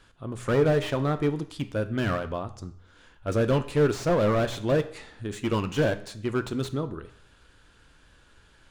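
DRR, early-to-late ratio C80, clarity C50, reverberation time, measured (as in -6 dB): 10.0 dB, 17.5 dB, 14.0 dB, 0.65 s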